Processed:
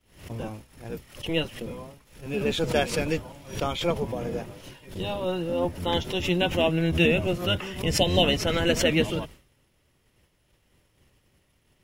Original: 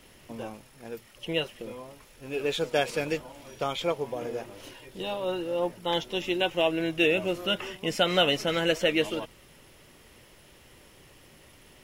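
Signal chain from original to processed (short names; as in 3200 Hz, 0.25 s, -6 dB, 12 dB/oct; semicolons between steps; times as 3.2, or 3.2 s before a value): octaver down 1 oct, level +4 dB; spectral repair 7.97–8.21, 1100–2600 Hz before; expander -41 dBFS; backwards sustainer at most 120 dB/s; gain +1 dB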